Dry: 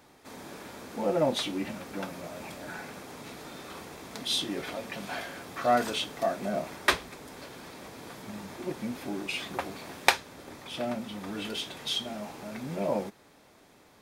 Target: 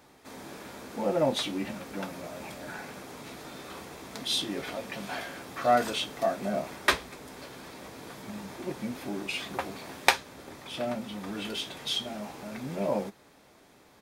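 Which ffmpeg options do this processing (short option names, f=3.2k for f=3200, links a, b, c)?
-filter_complex "[0:a]asplit=2[a][b];[b]adelay=15,volume=-13dB[c];[a][c]amix=inputs=2:normalize=0"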